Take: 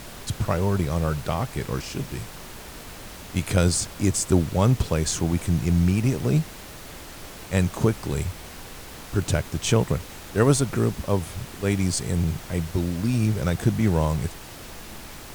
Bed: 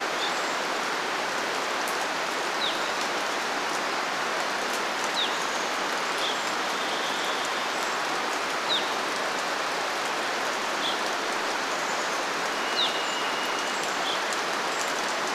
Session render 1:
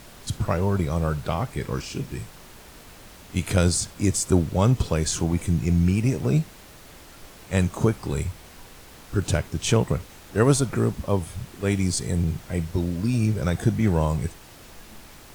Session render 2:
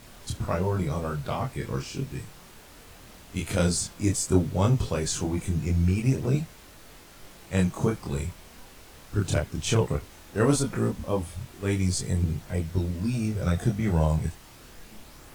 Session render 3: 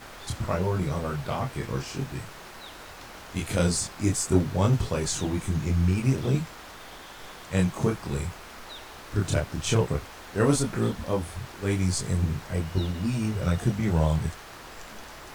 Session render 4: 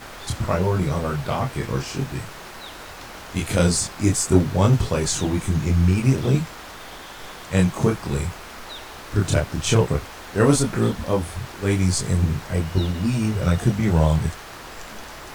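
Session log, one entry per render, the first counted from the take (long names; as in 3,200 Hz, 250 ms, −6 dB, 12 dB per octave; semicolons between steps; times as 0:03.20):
noise reduction from a noise print 6 dB
multi-voice chorus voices 2, 0.16 Hz, delay 25 ms, depth 4.4 ms
mix in bed −17.5 dB
level +5.5 dB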